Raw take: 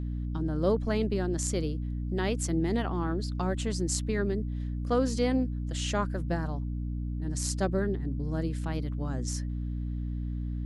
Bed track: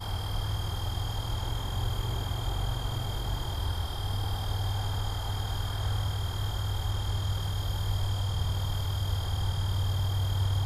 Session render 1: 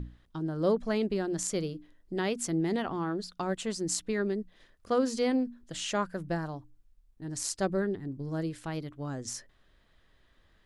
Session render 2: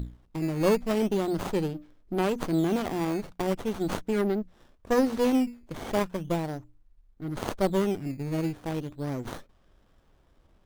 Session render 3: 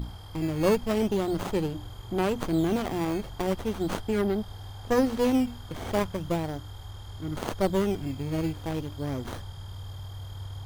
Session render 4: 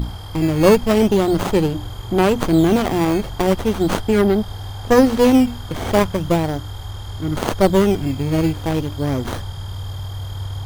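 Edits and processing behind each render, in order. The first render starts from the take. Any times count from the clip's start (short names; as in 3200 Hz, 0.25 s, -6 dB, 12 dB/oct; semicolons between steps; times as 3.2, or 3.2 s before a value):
notches 60/120/180/240/300 Hz
in parallel at -3 dB: decimation with a swept rate 11×, swing 160% 0.39 Hz; on the sum: running maximum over 17 samples
add bed track -11 dB
gain +11 dB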